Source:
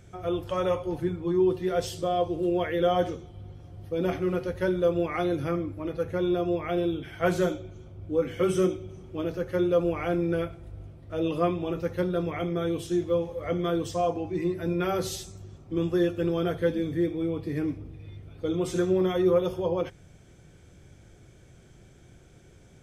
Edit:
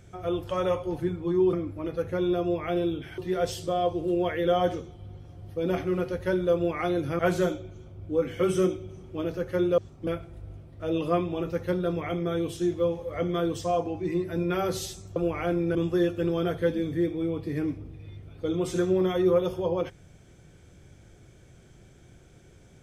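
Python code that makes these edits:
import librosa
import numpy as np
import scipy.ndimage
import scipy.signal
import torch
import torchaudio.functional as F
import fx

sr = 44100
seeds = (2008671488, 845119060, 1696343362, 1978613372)

y = fx.edit(x, sr, fx.move(start_s=5.54, length_s=1.65, to_s=1.53),
    fx.swap(start_s=9.78, length_s=0.59, other_s=15.46, other_length_s=0.29), tone=tone)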